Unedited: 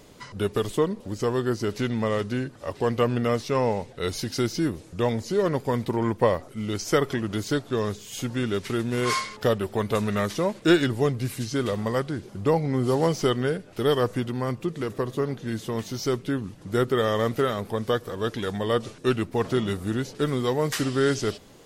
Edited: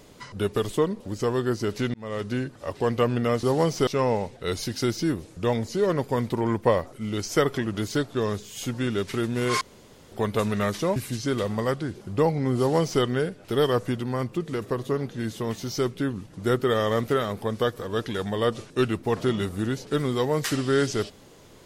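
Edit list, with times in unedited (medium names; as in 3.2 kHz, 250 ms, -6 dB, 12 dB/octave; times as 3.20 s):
1.94–2.32 s: fade in
9.17–9.68 s: room tone
10.52–11.24 s: delete
12.86–13.30 s: copy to 3.43 s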